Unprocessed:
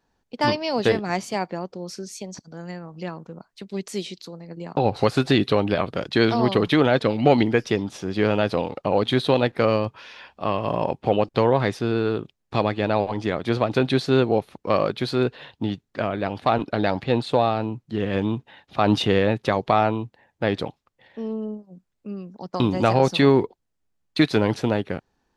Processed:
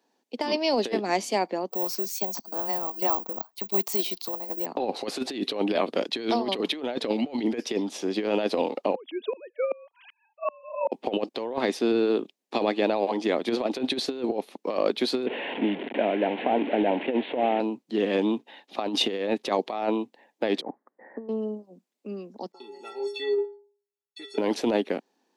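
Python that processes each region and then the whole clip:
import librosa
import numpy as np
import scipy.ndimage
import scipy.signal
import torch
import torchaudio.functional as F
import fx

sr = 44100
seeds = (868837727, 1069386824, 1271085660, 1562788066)

y = fx.chain(x, sr, fx.band_shelf(hz=940.0, db=10.5, octaves=1.1),
    fx.resample_bad(factor=2, down='filtered', up='zero_stuff'), at=(1.7, 4.66))
y = fx.chain(y, sr, fx.sine_speech(),
    fx.tremolo_decay(direction='swelling', hz=2.6, depth_db=32), at=(8.95, 10.92))
y = fx.chain(y, sr, fx.delta_mod(bps=16000, step_db=-27.5),
    fx.peak_eq(hz=1200.0, db=-12.5, octaves=0.32),
    fx.band_squash(depth_pct=40), at=(15.26, 17.6))
y = fx.chain(y, sr, fx.steep_lowpass(hz=1900.0, slope=72),
    fx.over_compress(threshold_db=-35.0, ratio=-0.5), at=(20.61, 21.29))
y = fx.chain(y, sr, fx.high_shelf(hz=5000.0, db=4.5),
    fx.stiff_resonator(f0_hz=400.0, decay_s=0.47, stiffness=0.03), at=(22.52, 24.38))
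y = scipy.signal.sosfilt(scipy.signal.butter(6, 230.0, 'highpass', fs=sr, output='sos'), y)
y = fx.peak_eq(y, sr, hz=1400.0, db=-8.0, octaves=0.74)
y = fx.over_compress(y, sr, threshold_db=-24.0, ratio=-0.5)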